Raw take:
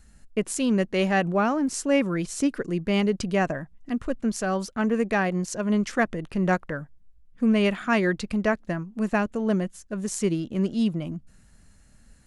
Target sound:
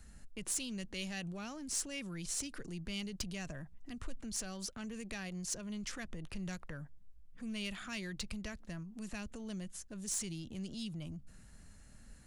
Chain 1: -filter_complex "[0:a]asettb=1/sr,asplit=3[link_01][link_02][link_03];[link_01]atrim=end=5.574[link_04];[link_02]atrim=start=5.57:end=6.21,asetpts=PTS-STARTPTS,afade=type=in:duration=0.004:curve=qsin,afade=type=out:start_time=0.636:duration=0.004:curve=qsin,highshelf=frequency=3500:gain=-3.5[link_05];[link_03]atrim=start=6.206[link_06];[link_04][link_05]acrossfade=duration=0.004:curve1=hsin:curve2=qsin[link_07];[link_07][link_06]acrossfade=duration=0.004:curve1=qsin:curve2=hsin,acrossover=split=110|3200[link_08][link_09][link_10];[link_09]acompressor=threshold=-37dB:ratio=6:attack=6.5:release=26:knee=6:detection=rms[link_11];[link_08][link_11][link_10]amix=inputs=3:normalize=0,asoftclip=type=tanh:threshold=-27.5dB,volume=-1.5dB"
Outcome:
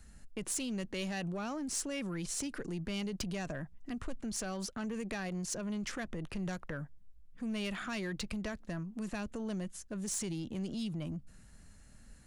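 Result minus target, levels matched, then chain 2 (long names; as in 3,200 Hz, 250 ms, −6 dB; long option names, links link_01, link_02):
downward compressor: peak gain reduction −9 dB
-filter_complex "[0:a]asettb=1/sr,asplit=3[link_01][link_02][link_03];[link_01]atrim=end=5.574[link_04];[link_02]atrim=start=5.57:end=6.21,asetpts=PTS-STARTPTS,afade=type=in:duration=0.004:curve=qsin,afade=type=out:start_time=0.636:duration=0.004:curve=qsin,highshelf=frequency=3500:gain=-3.5[link_05];[link_03]atrim=start=6.206[link_06];[link_04][link_05]acrossfade=duration=0.004:curve1=hsin:curve2=qsin[link_07];[link_07][link_06]acrossfade=duration=0.004:curve1=qsin:curve2=hsin,acrossover=split=110|3200[link_08][link_09][link_10];[link_09]acompressor=threshold=-48dB:ratio=6:attack=6.5:release=26:knee=6:detection=rms[link_11];[link_08][link_11][link_10]amix=inputs=3:normalize=0,asoftclip=type=tanh:threshold=-27.5dB,volume=-1.5dB"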